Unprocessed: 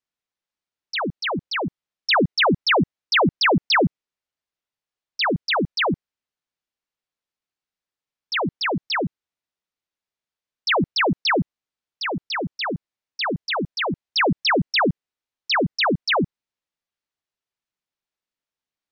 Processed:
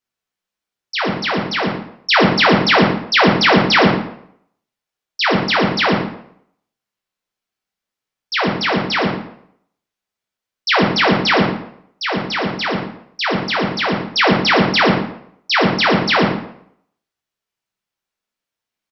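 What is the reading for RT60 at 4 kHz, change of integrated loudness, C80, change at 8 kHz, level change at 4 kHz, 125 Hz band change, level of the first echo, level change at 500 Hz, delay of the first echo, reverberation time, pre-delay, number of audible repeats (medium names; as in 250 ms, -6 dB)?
0.50 s, +6.0 dB, 6.5 dB, no reading, +6.0 dB, +6.5 dB, -10.0 dB, +6.5 dB, 116 ms, 0.70 s, 7 ms, 1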